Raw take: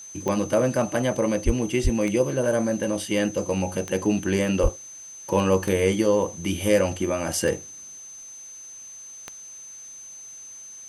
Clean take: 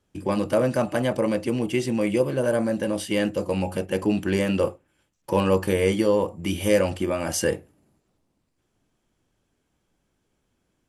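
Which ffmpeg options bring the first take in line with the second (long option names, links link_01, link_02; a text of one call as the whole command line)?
ffmpeg -i in.wav -filter_complex "[0:a]adeclick=threshold=4,bandreject=frequency=6200:width=30,asplit=3[link_01][link_02][link_03];[link_01]afade=type=out:start_time=1.45:duration=0.02[link_04];[link_02]highpass=frequency=140:width=0.5412,highpass=frequency=140:width=1.3066,afade=type=in:start_time=1.45:duration=0.02,afade=type=out:start_time=1.57:duration=0.02[link_05];[link_03]afade=type=in:start_time=1.57:duration=0.02[link_06];[link_04][link_05][link_06]amix=inputs=3:normalize=0,asplit=3[link_07][link_08][link_09];[link_07]afade=type=out:start_time=1.83:duration=0.02[link_10];[link_08]highpass=frequency=140:width=0.5412,highpass=frequency=140:width=1.3066,afade=type=in:start_time=1.83:duration=0.02,afade=type=out:start_time=1.95:duration=0.02[link_11];[link_09]afade=type=in:start_time=1.95:duration=0.02[link_12];[link_10][link_11][link_12]amix=inputs=3:normalize=0,asplit=3[link_13][link_14][link_15];[link_13]afade=type=out:start_time=4.62:duration=0.02[link_16];[link_14]highpass=frequency=140:width=0.5412,highpass=frequency=140:width=1.3066,afade=type=in:start_time=4.62:duration=0.02,afade=type=out:start_time=4.74:duration=0.02[link_17];[link_15]afade=type=in:start_time=4.74:duration=0.02[link_18];[link_16][link_17][link_18]amix=inputs=3:normalize=0,agate=range=-21dB:threshold=-34dB" out.wav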